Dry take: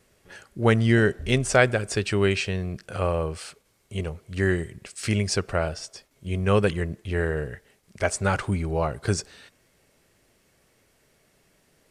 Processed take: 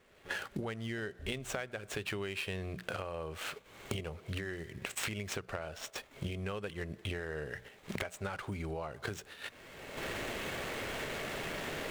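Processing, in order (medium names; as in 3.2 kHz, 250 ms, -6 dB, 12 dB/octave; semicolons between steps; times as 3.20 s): median filter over 9 samples; recorder AGC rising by 25 dB/s; gate -41 dBFS, range -10 dB; bass shelf 350 Hz -8 dB; compression 12:1, threshold -47 dBFS, peak gain reduction 32 dB; peaking EQ 3.5 kHz +4 dB 0.96 oct; hum notches 60/120/180 Hz; trim +10.5 dB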